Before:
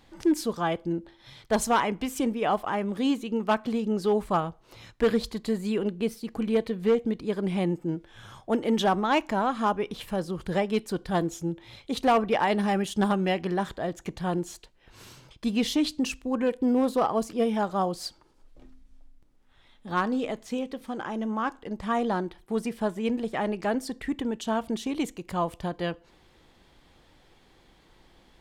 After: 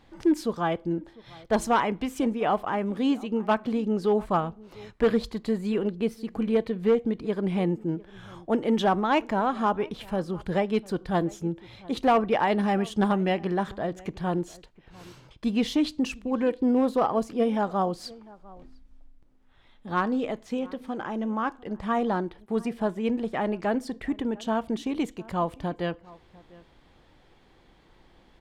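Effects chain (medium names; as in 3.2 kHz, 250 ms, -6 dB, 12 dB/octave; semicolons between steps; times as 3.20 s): treble shelf 4.4 kHz -9.5 dB; echo from a far wall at 120 m, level -22 dB; trim +1 dB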